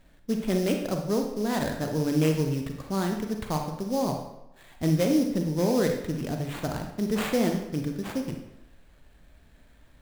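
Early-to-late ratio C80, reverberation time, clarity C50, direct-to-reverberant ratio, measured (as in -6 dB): 8.0 dB, 0.85 s, 5.5 dB, 3.0 dB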